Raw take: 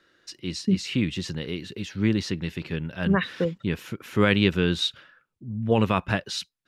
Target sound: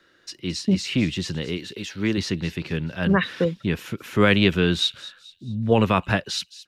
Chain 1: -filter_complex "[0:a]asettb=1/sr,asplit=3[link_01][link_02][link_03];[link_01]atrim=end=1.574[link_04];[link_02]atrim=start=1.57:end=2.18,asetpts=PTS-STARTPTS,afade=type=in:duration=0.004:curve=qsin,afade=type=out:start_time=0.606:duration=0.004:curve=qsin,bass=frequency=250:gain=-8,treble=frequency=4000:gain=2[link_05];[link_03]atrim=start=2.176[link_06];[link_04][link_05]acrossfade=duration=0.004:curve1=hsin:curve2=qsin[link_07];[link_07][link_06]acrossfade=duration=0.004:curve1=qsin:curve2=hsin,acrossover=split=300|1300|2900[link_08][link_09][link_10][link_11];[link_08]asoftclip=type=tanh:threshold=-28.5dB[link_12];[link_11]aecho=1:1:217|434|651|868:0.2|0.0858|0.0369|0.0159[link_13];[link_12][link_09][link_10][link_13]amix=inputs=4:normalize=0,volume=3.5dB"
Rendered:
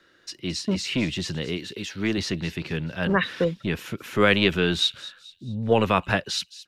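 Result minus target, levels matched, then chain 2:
soft clipping: distortion +12 dB
-filter_complex "[0:a]asettb=1/sr,asplit=3[link_01][link_02][link_03];[link_01]atrim=end=1.574[link_04];[link_02]atrim=start=1.57:end=2.18,asetpts=PTS-STARTPTS,afade=type=in:duration=0.004:curve=qsin,afade=type=out:start_time=0.606:duration=0.004:curve=qsin,bass=frequency=250:gain=-8,treble=frequency=4000:gain=2[link_05];[link_03]atrim=start=2.176[link_06];[link_04][link_05]acrossfade=duration=0.004:curve1=hsin:curve2=qsin[link_07];[link_07][link_06]acrossfade=duration=0.004:curve1=qsin:curve2=hsin,acrossover=split=300|1300|2900[link_08][link_09][link_10][link_11];[link_08]asoftclip=type=tanh:threshold=-17dB[link_12];[link_11]aecho=1:1:217|434|651|868:0.2|0.0858|0.0369|0.0159[link_13];[link_12][link_09][link_10][link_13]amix=inputs=4:normalize=0,volume=3.5dB"

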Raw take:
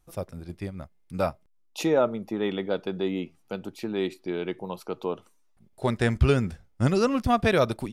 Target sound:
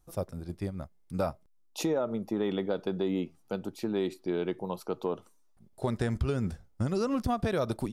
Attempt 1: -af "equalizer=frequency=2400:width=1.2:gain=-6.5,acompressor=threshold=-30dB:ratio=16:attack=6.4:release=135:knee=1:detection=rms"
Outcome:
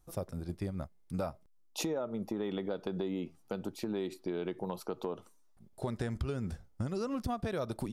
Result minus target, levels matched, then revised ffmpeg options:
downward compressor: peak gain reduction +6 dB
-af "equalizer=frequency=2400:width=1.2:gain=-6.5,acompressor=threshold=-23.5dB:ratio=16:attack=6.4:release=135:knee=1:detection=rms"

